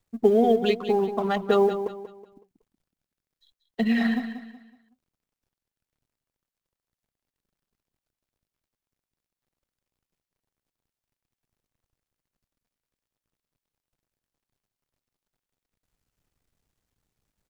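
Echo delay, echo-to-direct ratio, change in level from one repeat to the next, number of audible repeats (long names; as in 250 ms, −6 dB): 186 ms, −10.0 dB, −9.5 dB, 3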